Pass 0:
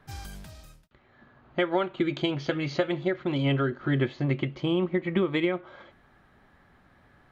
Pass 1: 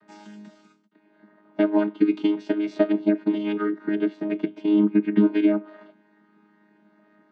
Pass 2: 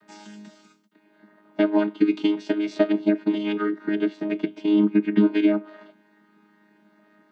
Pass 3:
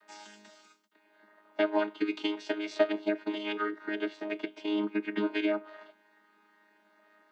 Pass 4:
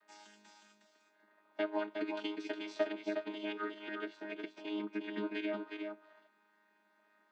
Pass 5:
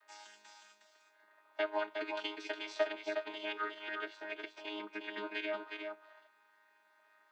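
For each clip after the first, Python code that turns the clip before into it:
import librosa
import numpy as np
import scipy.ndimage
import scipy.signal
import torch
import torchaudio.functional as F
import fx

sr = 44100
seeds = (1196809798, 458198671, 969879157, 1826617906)

y1 = fx.chord_vocoder(x, sr, chord='bare fifth', root=56)
y1 = y1 * 10.0 ** (6.0 / 20.0)
y2 = fx.high_shelf(y1, sr, hz=2900.0, db=9.0)
y3 = scipy.signal.sosfilt(scipy.signal.butter(2, 540.0, 'highpass', fs=sr, output='sos'), y2)
y3 = y3 * 10.0 ** (-1.5 / 20.0)
y4 = y3 + 10.0 ** (-5.5 / 20.0) * np.pad(y3, (int(362 * sr / 1000.0), 0))[:len(y3)]
y4 = y4 * 10.0 ** (-8.0 / 20.0)
y5 = scipy.signal.sosfilt(scipy.signal.butter(2, 610.0, 'highpass', fs=sr, output='sos'), y4)
y5 = y5 * 10.0 ** (4.0 / 20.0)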